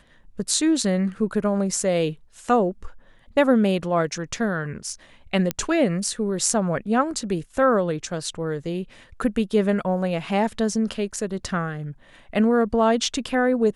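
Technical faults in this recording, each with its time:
5.51 s: pop -8 dBFS

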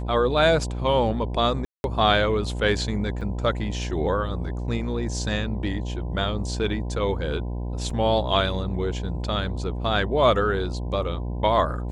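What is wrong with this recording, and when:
buzz 60 Hz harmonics 17 -29 dBFS
1.65–1.84 s: dropout 191 ms
3.21 s: dropout 3.2 ms
7.90 s: dropout 4.2 ms

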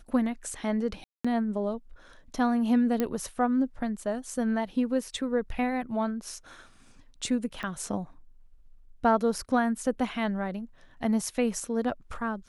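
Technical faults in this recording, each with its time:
1.04–1.25 s: dropout 205 ms
3.00 s: pop -14 dBFS
7.63 s: pop -23 dBFS

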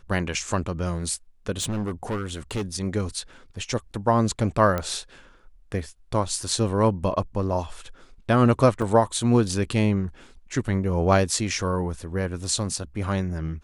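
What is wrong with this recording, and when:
1.60–2.63 s: clipped -23.5 dBFS
4.78 s: pop -13 dBFS
8.82 s: dropout 4.4 ms

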